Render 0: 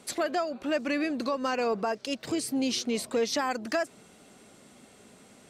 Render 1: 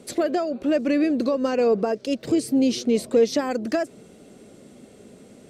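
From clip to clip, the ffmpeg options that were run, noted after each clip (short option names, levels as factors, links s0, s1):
-af "lowshelf=f=670:t=q:w=1.5:g=8"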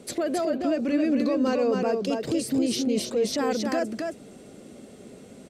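-af "alimiter=limit=0.112:level=0:latency=1:release=13,aecho=1:1:269:0.631"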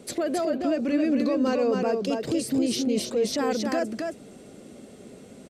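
-af "aresample=32000,aresample=44100"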